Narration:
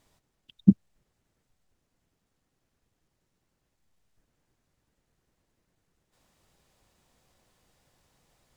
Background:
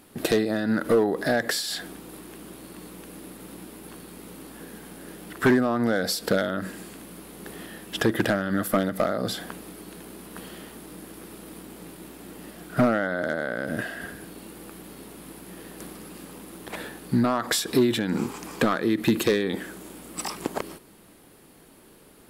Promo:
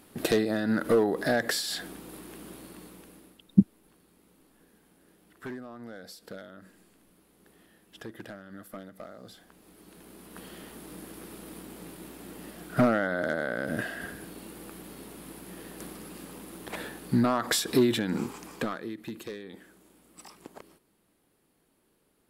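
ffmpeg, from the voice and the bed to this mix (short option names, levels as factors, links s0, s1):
-filter_complex "[0:a]adelay=2900,volume=0.841[s0];[1:a]volume=5.96,afade=t=out:st=2.53:d=0.89:silence=0.133352,afade=t=in:st=9.51:d=1.44:silence=0.125893,afade=t=out:st=17.89:d=1.11:silence=0.16788[s1];[s0][s1]amix=inputs=2:normalize=0"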